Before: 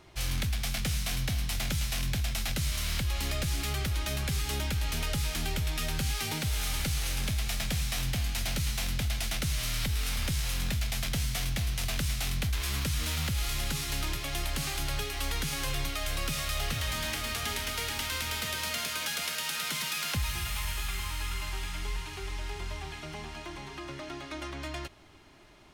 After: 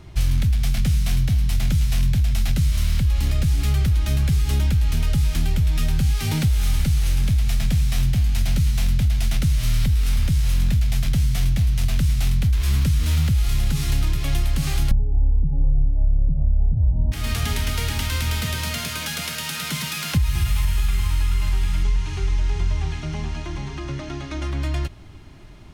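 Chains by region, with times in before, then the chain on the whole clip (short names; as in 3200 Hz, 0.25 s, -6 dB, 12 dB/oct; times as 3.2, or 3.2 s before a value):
14.91–17.12 steep low-pass 910 Hz 72 dB/oct + tilt -3 dB/oct
21.83–24.44 LPF 8200 Hz + bell 6200 Hz +5 dB 0.24 oct
whole clip: tone controls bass +14 dB, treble 0 dB; compressor, threshold -20 dBFS; gain +4.5 dB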